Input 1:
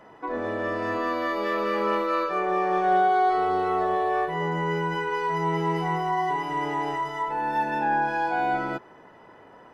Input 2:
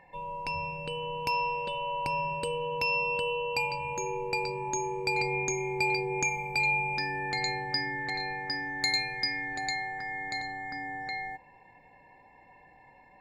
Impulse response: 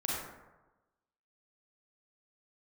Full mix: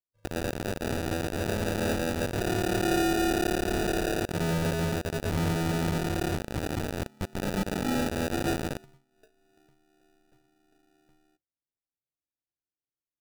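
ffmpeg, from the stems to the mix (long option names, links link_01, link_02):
-filter_complex "[0:a]bass=frequency=250:gain=10,treble=frequency=4000:gain=-3,acrossover=split=150[link_01][link_02];[link_01]acompressor=threshold=-32dB:ratio=6[link_03];[link_03][link_02]amix=inputs=2:normalize=0,acrusher=bits=3:mix=0:aa=0.000001,volume=-6dB[link_04];[1:a]acompressor=threshold=-35dB:ratio=12,volume=-17dB[link_05];[link_04][link_05]amix=inputs=2:normalize=0,agate=range=-33dB:threshold=-48dB:ratio=3:detection=peak,acrusher=samples=41:mix=1:aa=0.000001"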